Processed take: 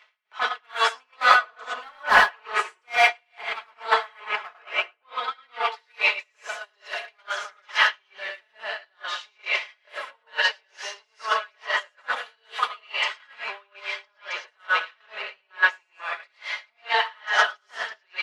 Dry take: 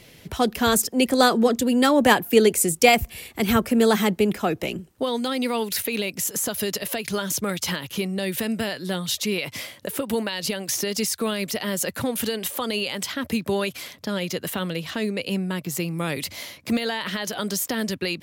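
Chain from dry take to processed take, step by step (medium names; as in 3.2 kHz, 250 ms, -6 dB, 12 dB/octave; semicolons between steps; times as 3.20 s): in parallel at +1 dB: compression 10:1, threshold -28 dBFS, peak gain reduction 17.5 dB; on the sum: waveshaping leveller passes 3; on a send: feedback delay 108 ms, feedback 37%, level -8 dB; on the sum: saturation -4 dBFS, distortion -21 dB; high-pass 970 Hz 24 dB/octave; tape spacing loss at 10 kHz 43 dB; hard clipper -16 dBFS, distortion -25 dB; comb 4.7 ms, depth 55%; echo from a far wall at 59 m, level -14 dB; gated-style reverb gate 140 ms rising, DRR -4 dB; gate -21 dBFS, range -9 dB; logarithmic tremolo 2.3 Hz, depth 37 dB; trim +4.5 dB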